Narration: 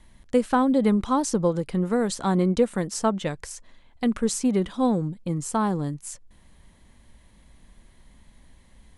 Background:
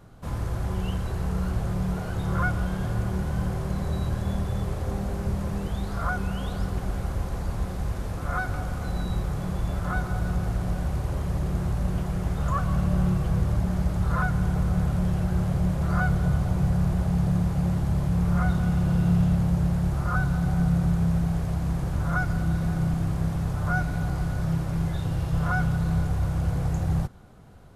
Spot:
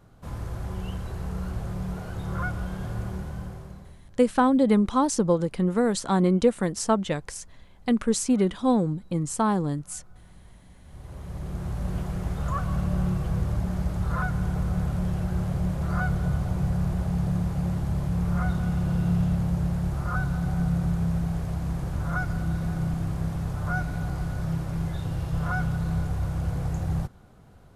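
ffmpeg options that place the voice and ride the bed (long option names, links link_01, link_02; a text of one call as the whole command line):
ffmpeg -i stem1.wav -i stem2.wav -filter_complex "[0:a]adelay=3850,volume=0.5dB[link_01];[1:a]volume=20dB,afade=type=out:start_time=3.05:duration=0.93:silence=0.0749894,afade=type=in:start_time=10.82:duration=1.14:silence=0.0595662[link_02];[link_01][link_02]amix=inputs=2:normalize=0" out.wav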